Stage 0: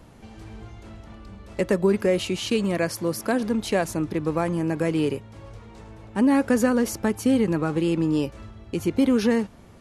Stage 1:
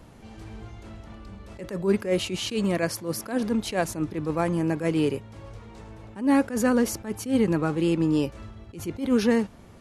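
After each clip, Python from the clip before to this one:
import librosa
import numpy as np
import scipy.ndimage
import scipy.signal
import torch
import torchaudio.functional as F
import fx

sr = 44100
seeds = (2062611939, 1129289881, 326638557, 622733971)

y = fx.attack_slew(x, sr, db_per_s=170.0)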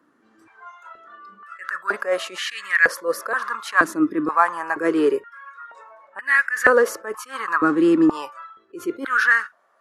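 y = fx.noise_reduce_blind(x, sr, reduce_db=16)
y = fx.band_shelf(y, sr, hz=1400.0, db=13.5, octaves=1.0)
y = fx.filter_held_highpass(y, sr, hz=2.1, low_hz=290.0, high_hz=1900.0)
y = F.gain(torch.from_numpy(y), -1.0).numpy()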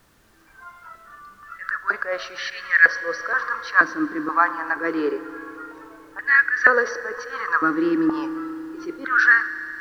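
y = scipy.signal.sosfilt(scipy.signal.cheby1(6, 9, 6000.0, 'lowpass', fs=sr, output='sos'), x)
y = fx.dmg_noise_colour(y, sr, seeds[0], colour='pink', level_db=-62.0)
y = fx.rev_fdn(y, sr, rt60_s=3.9, lf_ratio=1.0, hf_ratio=1.0, size_ms=19.0, drr_db=12.5)
y = F.gain(torch.from_numpy(y), 2.5).numpy()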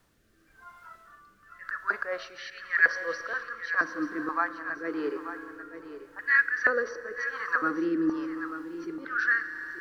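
y = fx.rotary(x, sr, hz=0.9)
y = y + 10.0 ** (-11.5 / 20.0) * np.pad(y, (int(886 * sr / 1000.0), 0))[:len(y)]
y = F.gain(torch.from_numpy(y), -5.5).numpy()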